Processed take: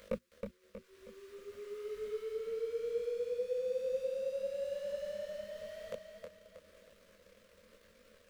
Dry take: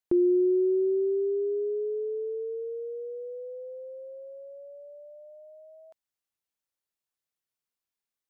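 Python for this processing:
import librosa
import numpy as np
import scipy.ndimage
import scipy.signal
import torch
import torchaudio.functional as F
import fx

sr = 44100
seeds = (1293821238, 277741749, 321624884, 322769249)

p1 = fx.bin_compress(x, sr, power=0.4)
p2 = fx.hum_notches(p1, sr, base_hz=60, count=6)
p3 = fx.dereverb_blind(p2, sr, rt60_s=1.3)
p4 = scipy.signal.sosfilt(scipy.signal.ellip(3, 1.0, 60, [210.0, 520.0], 'bandstop', fs=sr, output='sos'), p3)
p5 = fx.low_shelf(p4, sr, hz=74.0, db=-9.5)
p6 = fx.leveller(p5, sr, passes=2)
p7 = fx.fixed_phaser(p6, sr, hz=330.0, stages=4)
p8 = fx.rider(p7, sr, range_db=3, speed_s=0.5)
p9 = p7 + F.gain(torch.from_numpy(p8), 0.0).numpy()
p10 = fx.echo_feedback(p9, sr, ms=318, feedback_pct=43, wet_db=-5)
p11 = fx.detune_double(p10, sr, cents=35)
y = F.gain(torch.from_numpy(p11), 5.0).numpy()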